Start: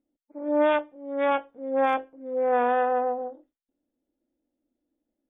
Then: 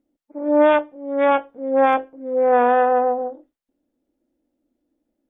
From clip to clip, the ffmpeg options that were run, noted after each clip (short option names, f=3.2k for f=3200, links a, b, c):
-af "highshelf=f=2.7k:g=-6,volume=7.5dB"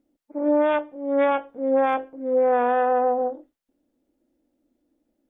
-af "acompressor=threshold=-18dB:ratio=10,volume=2dB"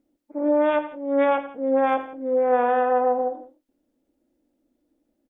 -af "aecho=1:1:83|104|169:0.2|0.119|0.112"